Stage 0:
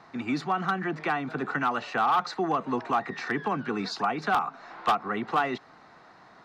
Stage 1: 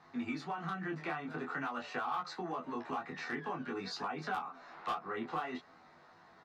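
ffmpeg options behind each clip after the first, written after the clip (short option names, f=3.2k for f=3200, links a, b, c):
-filter_complex "[0:a]acompressor=threshold=-28dB:ratio=4,flanger=delay=20:depth=6.7:speed=0.49,asplit=2[a][b];[b]adelay=12,volume=-4dB[c];[a][c]amix=inputs=2:normalize=0,volume=-5.5dB"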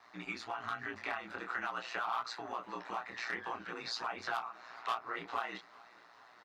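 -af "highpass=f=1.2k:p=1,aeval=exprs='val(0)*sin(2*PI*59*n/s)':c=same,aecho=1:1:422|844|1266|1688:0.0631|0.036|0.0205|0.0117,volume=7dB"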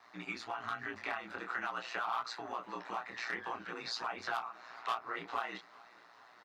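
-af "highpass=77"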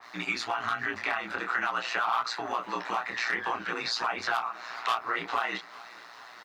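-filter_complex "[0:a]tiltshelf=f=1.5k:g=-4,asplit=2[a][b];[b]alimiter=level_in=7.5dB:limit=-24dB:level=0:latency=1:release=79,volume=-7.5dB,volume=1.5dB[c];[a][c]amix=inputs=2:normalize=0,adynamicequalizer=threshold=0.00562:dfrequency=2700:dqfactor=0.7:tfrequency=2700:tqfactor=0.7:attack=5:release=100:ratio=0.375:range=2.5:mode=cutabove:tftype=highshelf,volume=5dB"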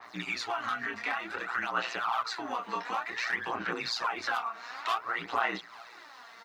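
-af "aphaser=in_gain=1:out_gain=1:delay=4.4:decay=0.55:speed=0.55:type=sinusoidal,volume=-4dB"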